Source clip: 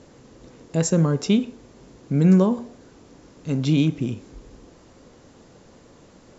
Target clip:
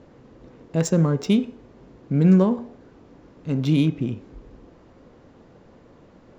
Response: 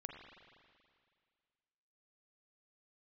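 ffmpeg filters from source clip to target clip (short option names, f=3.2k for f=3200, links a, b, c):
-af "adynamicsmooth=sensitivity=3:basefreq=3k,bandreject=f=419.3:t=h:w=4,bandreject=f=838.6:t=h:w=4,bandreject=f=1.2579k:t=h:w=4,bandreject=f=1.6772k:t=h:w=4,bandreject=f=2.0965k:t=h:w=4,bandreject=f=2.5158k:t=h:w=4,bandreject=f=2.9351k:t=h:w=4,bandreject=f=3.3544k:t=h:w=4,bandreject=f=3.7737k:t=h:w=4,bandreject=f=4.193k:t=h:w=4,bandreject=f=4.6123k:t=h:w=4,bandreject=f=5.0316k:t=h:w=4,bandreject=f=5.4509k:t=h:w=4,bandreject=f=5.8702k:t=h:w=4,bandreject=f=6.2895k:t=h:w=4,bandreject=f=6.7088k:t=h:w=4,bandreject=f=7.1281k:t=h:w=4,bandreject=f=7.5474k:t=h:w=4,bandreject=f=7.9667k:t=h:w=4,bandreject=f=8.386k:t=h:w=4"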